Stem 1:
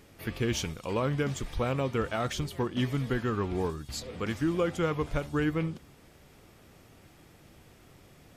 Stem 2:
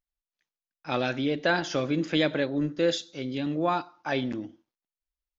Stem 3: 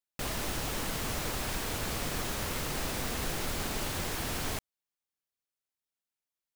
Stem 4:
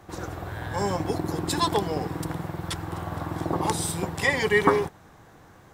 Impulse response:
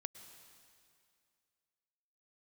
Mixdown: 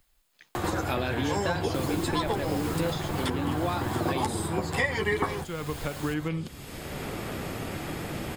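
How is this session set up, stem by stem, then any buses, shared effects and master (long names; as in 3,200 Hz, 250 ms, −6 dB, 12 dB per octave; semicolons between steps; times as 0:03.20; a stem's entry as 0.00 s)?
−6.0 dB, 0.70 s, no send, downward compressor 2 to 1, threshold −32 dBFS, peak gain reduction 5.5 dB
−6.5 dB, 0.00 s, no send, no processing
0:03.01 −7.5 dB → 0:03.77 −20 dB, 1.55 s, no send, no processing
+1.0 dB, 0.55 s, no send, multi-voice chorus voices 4, 0.53 Hz, delay 11 ms, depth 2.9 ms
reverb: not used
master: notch filter 5,800 Hz, Q 8.7; multiband upward and downward compressor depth 100%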